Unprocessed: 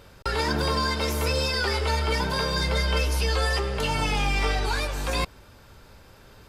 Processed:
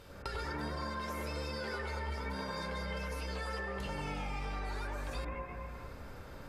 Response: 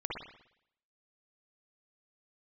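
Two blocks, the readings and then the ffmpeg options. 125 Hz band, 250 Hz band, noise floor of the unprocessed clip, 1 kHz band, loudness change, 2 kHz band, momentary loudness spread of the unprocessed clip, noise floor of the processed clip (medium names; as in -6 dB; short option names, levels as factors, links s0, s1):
-14.0 dB, -11.0 dB, -51 dBFS, -12.0 dB, -14.5 dB, -13.0 dB, 4 LU, -49 dBFS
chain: -filter_complex "[1:a]atrim=start_sample=2205,asetrate=26019,aresample=44100[s0];[0:a][s0]afir=irnorm=-1:irlink=0,acompressor=threshold=0.02:ratio=4,volume=0.562"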